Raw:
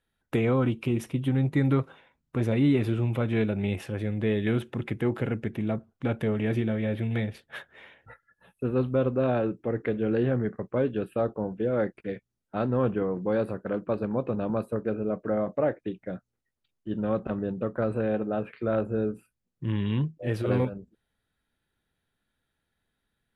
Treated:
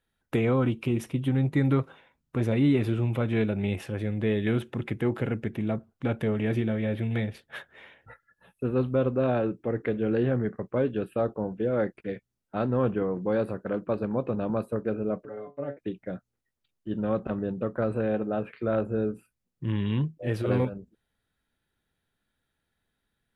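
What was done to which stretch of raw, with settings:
15.25–15.77 metallic resonator 140 Hz, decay 0.22 s, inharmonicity 0.002

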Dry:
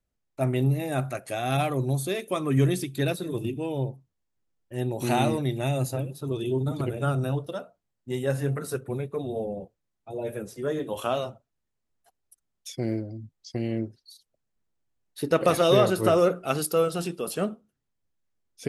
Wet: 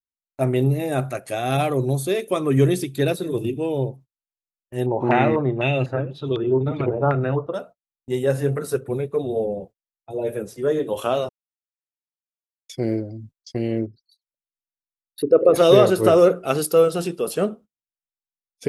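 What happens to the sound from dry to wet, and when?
4.86–7.54 stepped low-pass 4 Hz 940–3400 Hz
11.29–12.69 mute
13.86–15.56 formant sharpening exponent 2
whole clip: gate -46 dBFS, range -30 dB; dynamic EQ 440 Hz, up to +6 dB, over -38 dBFS, Q 1.8; gain +3 dB

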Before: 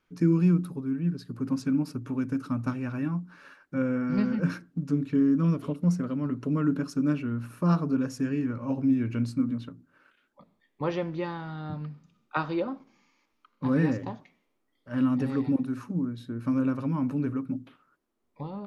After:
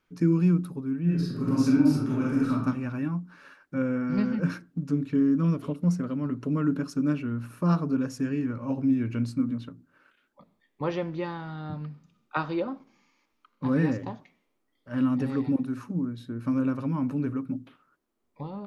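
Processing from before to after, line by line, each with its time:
1.02–2.52 reverb throw, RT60 0.82 s, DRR -6.5 dB

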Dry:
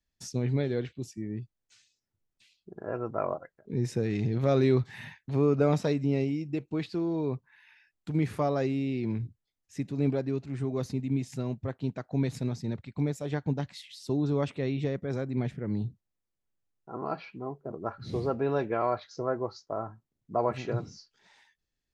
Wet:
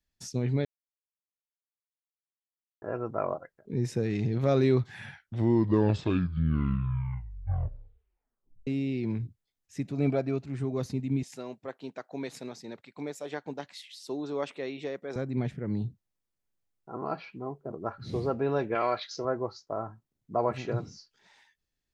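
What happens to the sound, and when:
0.65–2.82 mute
4.76 tape stop 3.91 s
9.85–10.37 small resonant body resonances 670/1300/2300 Hz, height 7 dB -> 12 dB, ringing for 25 ms
11.23–15.16 HPF 400 Hz
18.75–19.25 weighting filter D

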